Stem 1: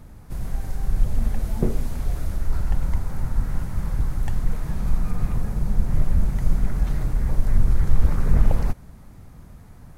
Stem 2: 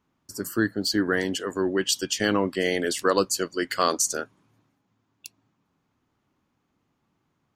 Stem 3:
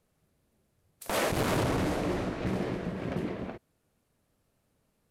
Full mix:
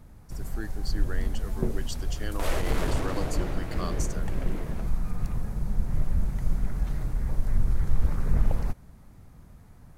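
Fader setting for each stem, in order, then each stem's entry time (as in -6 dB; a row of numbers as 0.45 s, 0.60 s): -6.0 dB, -15.0 dB, -4.0 dB; 0.00 s, 0.00 s, 1.30 s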